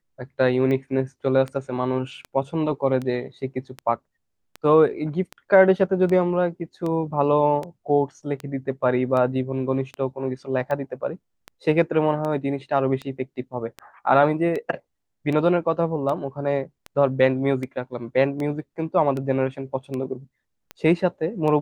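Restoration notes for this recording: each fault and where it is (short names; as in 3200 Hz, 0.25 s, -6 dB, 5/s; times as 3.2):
tick 78 rpm -18 dBFS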